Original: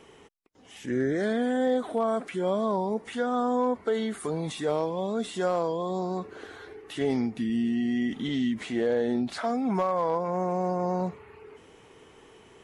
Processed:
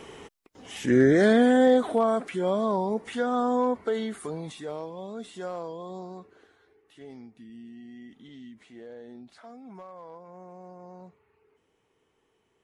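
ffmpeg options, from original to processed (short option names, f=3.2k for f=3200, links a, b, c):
-af "volume=8dB,afade=t=out:st=1.36:d=0.88:silence=0.446684,afade=t=out:st=3.62:d=1.07:silence=0.334965,afade=t=out:st=5.95:d=0.61:silence=0.316228"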